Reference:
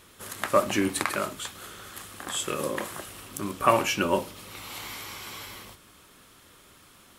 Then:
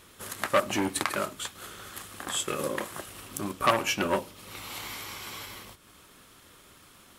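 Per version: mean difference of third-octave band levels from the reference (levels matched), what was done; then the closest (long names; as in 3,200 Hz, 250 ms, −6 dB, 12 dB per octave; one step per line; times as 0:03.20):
1.5 dB: transient designer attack +1 dB, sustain −5 dB
saturating transformer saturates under 2,100 Hz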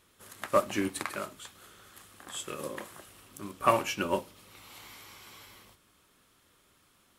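5.0 dB: in parallel at −10 dB: hard clipping −17 dBFS, distortion −12 dB
on the sum: expander for the loud parts 1.5 to 1, over −33 dBFS
level −4 dB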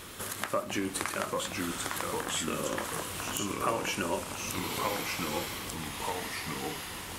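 9.5 dB: downward compressor 2.5 to 1, threshold −47 dBFS, peak gain reduction 21 dB
delay with pitch and tempo change per echo 728 ms, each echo −2 semitones, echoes 2
level +9 dB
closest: first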